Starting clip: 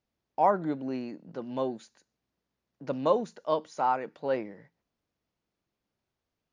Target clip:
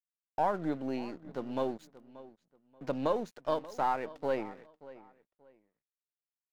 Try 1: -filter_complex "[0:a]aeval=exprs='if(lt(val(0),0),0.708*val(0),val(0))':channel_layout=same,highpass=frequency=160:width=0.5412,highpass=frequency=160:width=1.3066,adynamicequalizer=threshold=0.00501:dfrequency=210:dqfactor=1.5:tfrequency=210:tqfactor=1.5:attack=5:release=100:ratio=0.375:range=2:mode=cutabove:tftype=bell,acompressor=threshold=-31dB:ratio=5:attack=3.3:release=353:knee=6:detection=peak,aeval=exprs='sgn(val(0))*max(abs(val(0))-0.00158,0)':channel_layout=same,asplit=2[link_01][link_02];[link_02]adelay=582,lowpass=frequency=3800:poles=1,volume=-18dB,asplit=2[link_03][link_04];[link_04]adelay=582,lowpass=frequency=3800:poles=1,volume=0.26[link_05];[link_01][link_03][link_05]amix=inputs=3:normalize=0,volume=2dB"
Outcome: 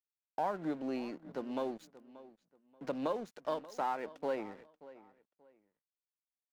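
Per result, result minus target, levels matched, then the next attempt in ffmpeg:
downward compressor: peak gain reduction +5 dB; 125 Hz band −3.5 dB
-filter_complex "[0:a]aeval=exprs='if(lt(val(0),0),0.708*val(0),val(0))':channel_layout=same,highpass=frequency=160:width=0.5412,highpass=frequency=160:width=1.3066,adynamicequalizer=threshold=0.00501:dfrequency=210:dqfactor=1.5:tfrequency=210:tqfactor=1.5:attack=5:release=100:ratio=0.375:range=2:mode=cutabove:tftype=bell,acompressor=threshold=-24.5dB:ratio=5:attack=3.3:release=353:knee=6:detection=peak,aeval=exprs='sgn(val(0))*max(abs(val(0))-0.00158,0)':channel_layout=same,asplit=2[link_01][link_02];[link_02]adelay=582,lowpass=frequency=3800:poles=1,volume=-18dB,asplit=2[link_03][link_04];[link_04]adelay=582,lowpass=frequency=3800:poles=1,volume=0.26[link_05];[link_01][link_03][link_05]amix=inputs=3:normalize=0,volume=2dB"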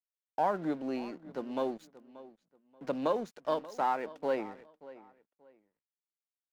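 125 Hz band −4.5 dB
-filter_complex "[0:a]aeval=exprs='if(lt(val(0),0),0.708*val(0),val(0))':channel_layout=same,adynamicequalizer=threshold=0.00501:dfrequency=210:dqfactor=1.5:tfrequency=210:tqfactor=1.5:attack=5:release=100:ratio=0.375:range=2:mode=cutabove:tftype=bell,acompressor=threshold=-24.5dB:ratio=5:attack=3.3:release=353:knee=6:detection=peak,aeval=exprs='sgn(val(0))*max(abs(val(0))-0.00158,0)':channel_layout=same,asplit=2[link_01][link_02];[link_02]adelay=582,lowpass=frequency=3800:poles=1,volume=-18dB,asplit=2[link_03][link_04];[link_04]adelay=582,lowpass=frequency=3800:poles=1,volume=0.26[link_05];[link_01][link_03][link_05]amix=inputs=3:normalize=0,volume=2dB"

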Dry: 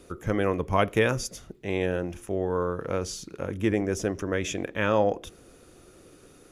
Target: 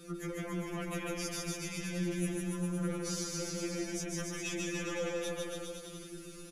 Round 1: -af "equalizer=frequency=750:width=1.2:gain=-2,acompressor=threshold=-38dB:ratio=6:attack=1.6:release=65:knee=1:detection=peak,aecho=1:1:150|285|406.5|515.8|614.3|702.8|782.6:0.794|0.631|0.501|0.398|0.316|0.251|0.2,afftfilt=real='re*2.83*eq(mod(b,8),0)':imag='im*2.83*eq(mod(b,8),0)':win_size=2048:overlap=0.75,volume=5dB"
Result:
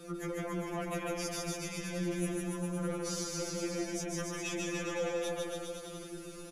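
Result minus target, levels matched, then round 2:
1,000 Hz band +3.0 dB
-af "equalizer=frequency=750:width=1.2:gain=-13,acompressor=threshold=-38dB:ratio=6:attack=1.6:release=65:knee=1:detection=peak,aecho=1:1:150|285|406.5|515.8|614.3|702.8|782.6:0.794|0.631|0.501|0.398|0.316|0.251|0.2,afftfilt=real='re*2.83*eq(mod(b,8),0)':imag='im*2.83*eq(mod(b,8),0)':win_size=2048:overlap=0.75,volume=5dB"

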